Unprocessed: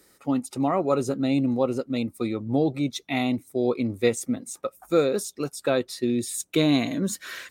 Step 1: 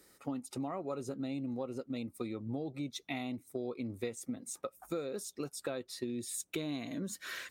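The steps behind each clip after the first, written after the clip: compression 6:1, threshold -31 dBFS, peak gain reduction 14.5 dB; trim -4.5 dB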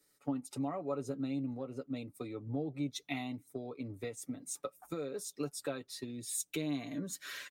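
comb 6.9 ms, depth 58%; three bands expanded up and down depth 40%; trim -1.5 dB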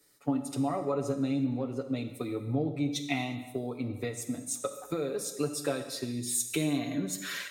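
gated-style reverb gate 390 ms falling, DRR 7 dB; trim +6.5 dB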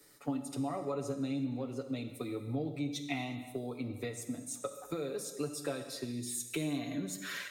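three bands compressed up and down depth 40%; trim -5.5 dB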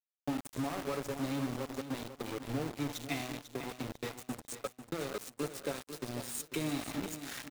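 small samples zeroed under -36 dBFS; feedback delay 496 ms, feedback 32%, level -11 dB

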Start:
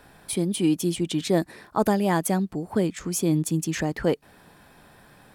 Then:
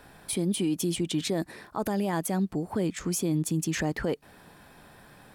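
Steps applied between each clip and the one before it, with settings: peak limiter -20 dBFS, peak gain reduction 9.5 dB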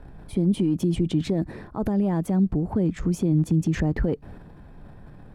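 tilt EQ -4.5 dB/octave; transient shaper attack +1 dB, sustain +7 dB; trim -4 dB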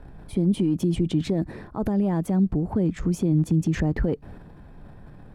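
no audible change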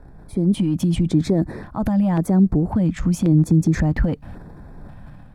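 level rider gain up to 6 dB; LFO notch square 0.92 Hz 400–2900 Hz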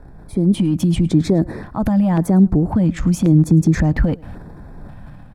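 delay 107 ms -23 dB; trim +3 dB

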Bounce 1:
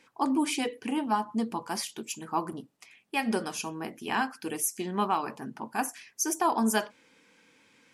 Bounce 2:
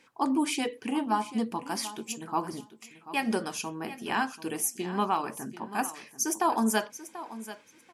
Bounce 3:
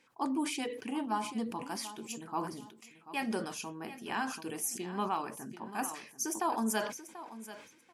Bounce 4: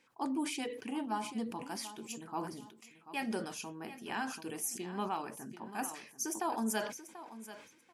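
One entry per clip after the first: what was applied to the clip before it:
feedback delay 737 ms, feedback 16%, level -14.5 dB
decay stretcher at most 81 dB/s; trim -6.5 dB
dynamic bell 1.1 kHz, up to -5 dB, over -53 dBFS, Q 5.4; trim -2 dB

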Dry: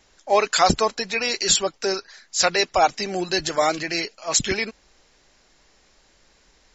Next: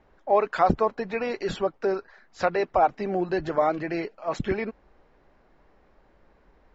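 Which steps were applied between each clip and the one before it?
low-pass 1.2 kHz 12 dB/octave; in parallel at +0.5 dB: compression, threshold -27 dBFS, peak gain reduction 13.5 dB; on the sum: trim -4 dB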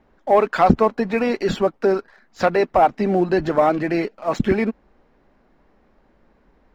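waveshaping leveller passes 1; peaking EQ 230 Hz +7 dB 0.74 oct; trim +2.5 dB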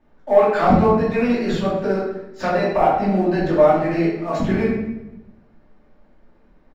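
feedback delay 121 ms, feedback 47%, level -19.5 dB; simulated room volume 290 m³, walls mixed, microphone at 2.6 m; trim -8.5 dB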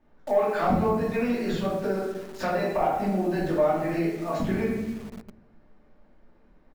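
in parallel at -4 dB: bit crusher 6-bit; on the sum: compression 1.5:1, threshold -32 dBFS, peak gain reduction 10 dB; trim -4 dB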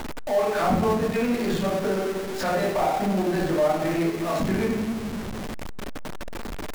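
jump at every zero crossing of -26 dBFS; transient shaper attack -4 dB, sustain -8 dB

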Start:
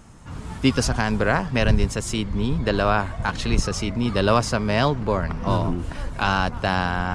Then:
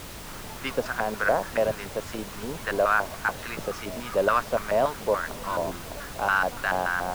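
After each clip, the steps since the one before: LFO band-pass square 3.5 Hz 600–1500 Hz; added noise pink -43 dBFS; trim +3.5 dB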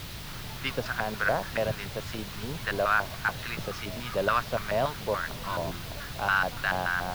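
graphic EQ 125/250/500/1000/4000/8000 Hz +7/-4/-5/-3/+5/-6 dB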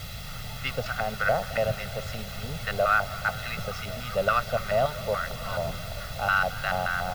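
comb 1.5 ms, depth 86%; modulated delay 214 ms, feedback 76%, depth 89 cents, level -18.5 dB; trim -1.5 dB

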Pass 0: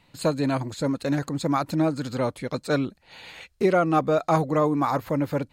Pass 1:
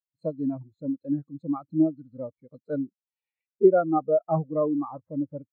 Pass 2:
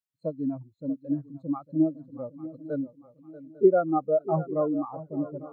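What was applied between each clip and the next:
spectral contrast expander 2.5:1; trim +1.5 dB
shuffle delay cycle 848 ms, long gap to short 3:1, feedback 34%, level -15.5 dB; trim -1.5 dB

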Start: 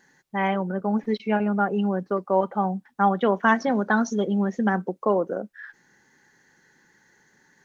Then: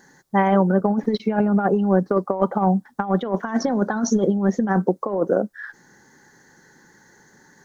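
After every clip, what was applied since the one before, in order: peaking EQ 2.6 kHz -12.5 dB 0.85 oct; compressor with a negative ratio -25 dBFS, ratio -0.5; trim +7 dB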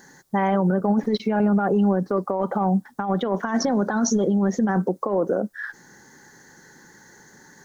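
peak limiter -15.5 dBFS, peak gain reduction 10.5 dB; treble shelf 5.8 kHz +5 dB; trim +2.5 dB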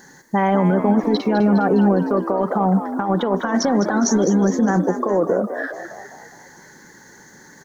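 frequency-shifting echo 205 ms, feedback 55%, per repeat +65 Hz, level -10 dB; trim +3.5 dB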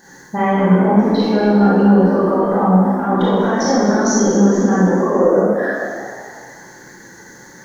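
in parallel at -2.5 dB: gain riding 0.5 s; on the sum: reverberation RT60 1.4 s, pre-delay 18 ms, DRR -8.5 dB; trim -10 dB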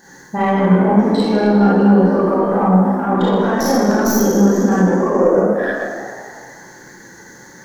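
tracing distortion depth 0.084 ms

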